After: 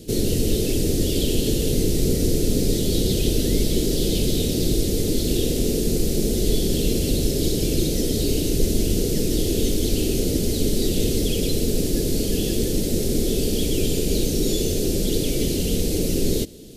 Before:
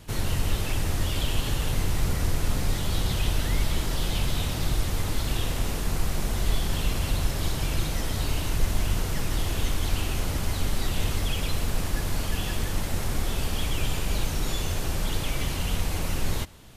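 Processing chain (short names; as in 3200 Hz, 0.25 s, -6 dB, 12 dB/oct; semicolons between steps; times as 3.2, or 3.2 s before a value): EQ curve 110 Hz 0 dB, 230 Hz +11 dB, 440 Hz +15 dB, 1000 Hz -21 dB, 4300 Hz +6 dB; gain +2 dB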